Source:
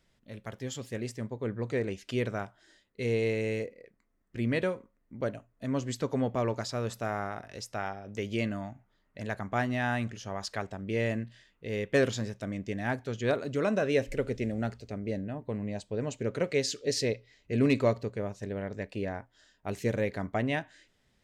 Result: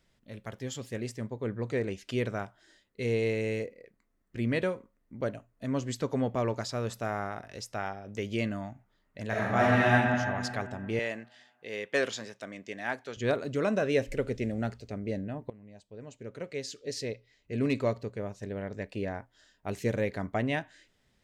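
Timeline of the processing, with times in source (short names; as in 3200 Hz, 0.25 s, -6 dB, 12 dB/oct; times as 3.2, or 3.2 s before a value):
9.27–9.92 reverb throw, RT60 2.2 s, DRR -6.5 dB
10.99–13.17 weighting filter A
15.5–19.02 fade in, from -19.5 dB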